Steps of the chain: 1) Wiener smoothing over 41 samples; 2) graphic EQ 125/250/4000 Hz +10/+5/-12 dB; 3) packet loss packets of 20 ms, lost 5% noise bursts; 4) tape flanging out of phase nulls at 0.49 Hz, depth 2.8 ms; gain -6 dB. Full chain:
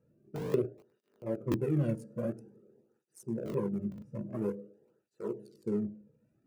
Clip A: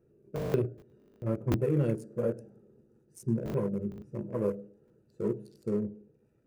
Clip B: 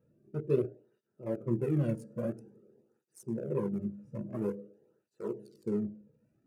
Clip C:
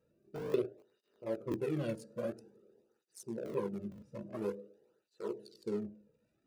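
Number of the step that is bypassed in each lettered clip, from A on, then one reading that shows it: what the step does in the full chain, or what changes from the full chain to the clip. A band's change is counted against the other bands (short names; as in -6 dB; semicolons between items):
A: 4, 250 Hz band -1.5 dB; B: 3, 2 kHz band -2.0 dB; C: 2, 125 Hz band -8.5 dB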